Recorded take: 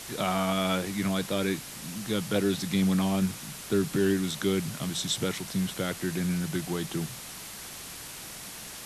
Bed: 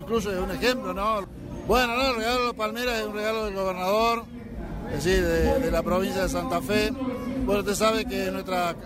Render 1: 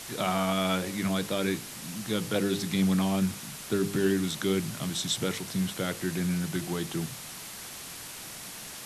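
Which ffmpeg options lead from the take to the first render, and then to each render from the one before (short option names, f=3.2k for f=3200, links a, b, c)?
-af "bandreject=f=50:t=h:w=4,bandreject=f=100:t=h:w=4,bandreject=f=150:t=h:w=4,bandreject=f=200:t=h:w=4,bandreject=f=250:t=h:w=4,bandreject=f=300:t=h:w=4,bandreject=f=350:t=h:w=4,bandreject=f=400:t=h:w=4,bandreject=f=450:t=h:w=4,bandreject=f=500:t=h:w=4,bandreject=f=550:t=h:w=4"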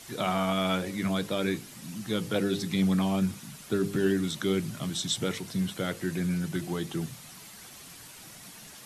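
-af "afftdn=nr=8:nf=-42"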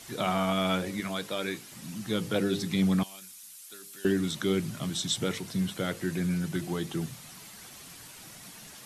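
-filter_complex "[0:a]asettb=1/sr,asplit=3[a][b][c];[a]atrim=end=1.004[d];[b]atrim=start=1:end=1.72,asetpts=PTS-STARTPTS,afade=t=in:d=0.004:c=qsin,afade=t=out:st=0.716:d=0.004:c=qsin,lowshelf=f=350:g=-10.5[e];[c]atrim=start=1.716[f];[d][e]acrossfade=d=0.004:c1=hsin:c2=qsin[g];[g][f]acrossfade=d=0.004:c1=qsin:c2=hsin,asettb=1/sr,asplit=3[h][i][j];[h]atrim=end=3.034[k];[i]atrim=start=3.03:end=4.05,asetpts=PTS-STARTPTS,afade=t=in:d=0.004:c=qsin,afade=t=out:st=1.016:d=0.004:c=qsin,aderivative[l];[j]atrim=start=4.046[m];[k][l]acrossfade=d=0.004:c1=hsin:c2=qsin[n];[n][m]acrossfade=d=0.004:c1=qsin:c2=hsin"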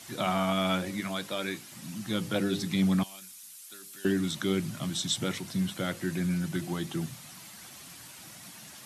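-af "highpass=70,equalizer=f=440:w=7.9:g=-11"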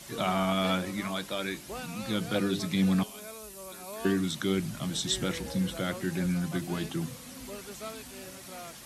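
-filter_complex "[1:a]volume=-19dB[a];[0:a][a]amix=inputs=2:normalize=0"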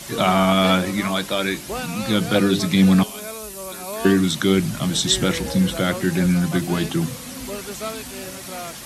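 -af "volume=11dB"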